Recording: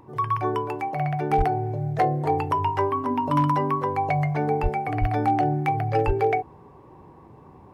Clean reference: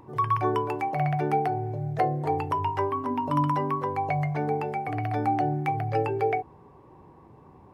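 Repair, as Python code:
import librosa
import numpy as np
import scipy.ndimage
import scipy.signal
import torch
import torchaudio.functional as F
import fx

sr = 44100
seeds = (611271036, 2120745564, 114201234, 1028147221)

y = fx.fix_declip(x, sr, threshold_db=-13.0)
y = fx.fix_deplosive(y, sr, at_s=(1.37, 4.62, 5.0, 6.06))
y = fx.fix_level(y, sr, at_s=1.31, step_db=-3.5)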